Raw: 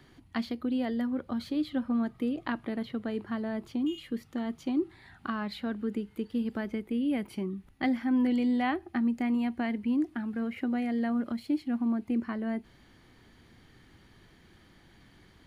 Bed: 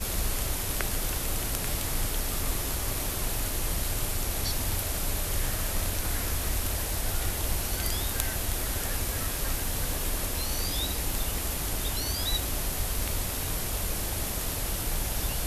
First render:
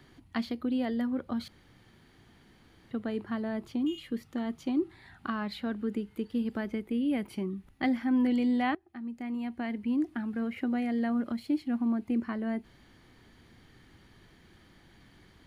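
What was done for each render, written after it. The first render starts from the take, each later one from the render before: 1.48–2.91 s: room tone; 8.75–10.12 s: fade in, from -21.5 dB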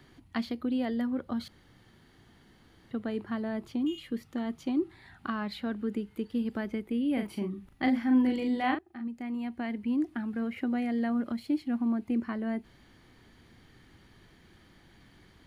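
1.20–2.96 s: band-stop 2.4 kHz; 7.13–9.08 s: doubling 39 ms -5.5 dB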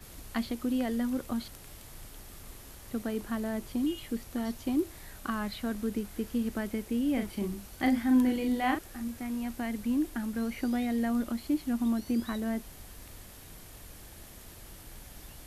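add bed -18.5 dB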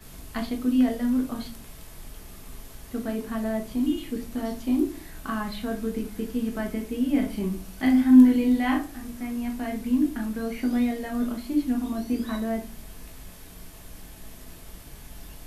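simulated room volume 200 m³, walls furnished, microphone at 1.5 m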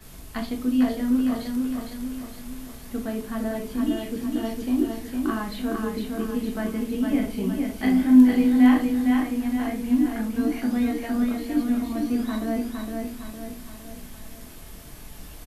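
feedback delay 459 ms, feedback 49%, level -4 dB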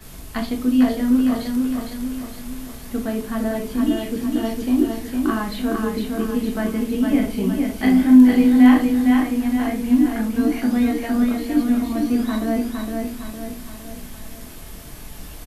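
trim +5 dB; peak limiter -3 dBFS, peak gain reduction 2.5 dB

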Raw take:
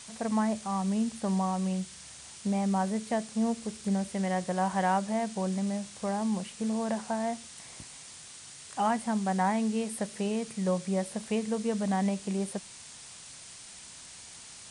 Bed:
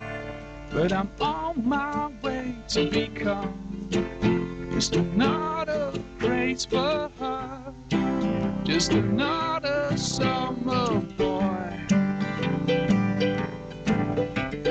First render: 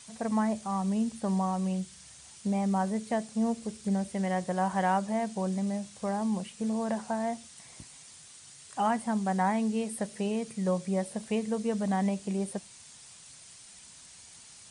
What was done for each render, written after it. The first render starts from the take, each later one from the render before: noise reduction 6 dB, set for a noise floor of -48 dBFS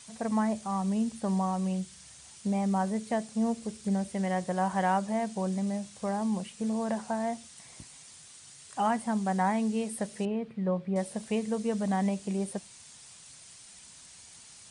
10.25–10.96 s: distance through air 420 m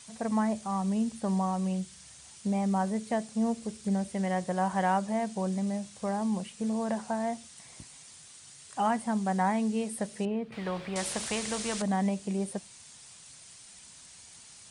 10.52–11.82 s: spectrum-flattening compressor 2:1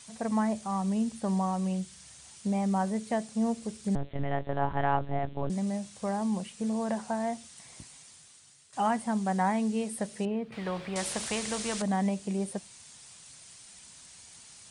3.95–5.50 s: monotone LPC vocoder at 8 kHz 140 Hz; 7.85–8.73 s: fade out, to -11.5 dB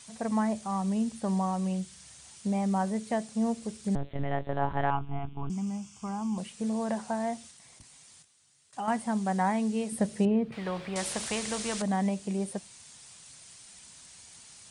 4.90–6.38 s: static phaser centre 2.7 kHz, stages 8; 7.51–8.88 s: level held to a coarse grid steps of 11 dB; 9.92–10.52 s: bass shelf 410 Hz +9 dB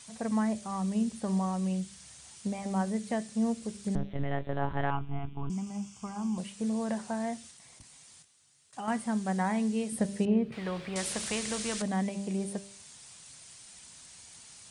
de-hum 198.2 Hz, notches 31; dynamic bell 820 Hz, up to -5 dB, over -44 dBFS, Q 1.4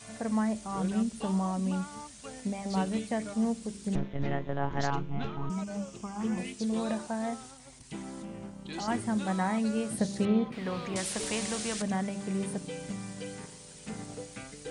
add bed -16.5 dB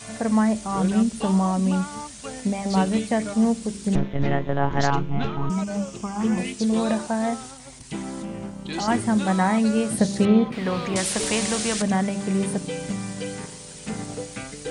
trim +9 dB

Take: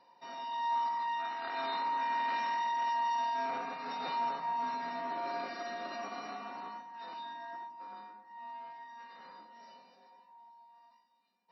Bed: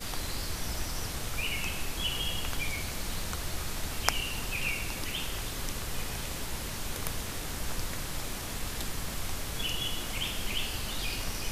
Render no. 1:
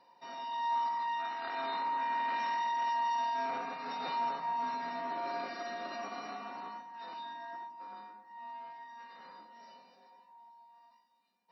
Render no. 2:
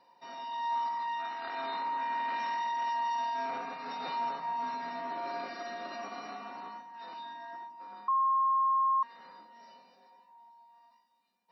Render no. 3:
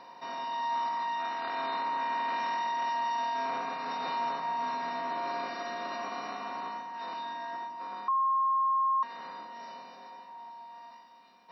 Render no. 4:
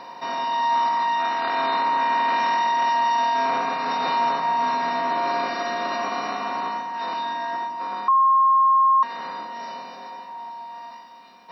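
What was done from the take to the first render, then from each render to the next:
1.55–2.40 s: distance through air 96 m
8.08–9.03 s: bleep 1.07 kHz -24 dBFS
spectral levelling over time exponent 0.6
trim +10.5 dB

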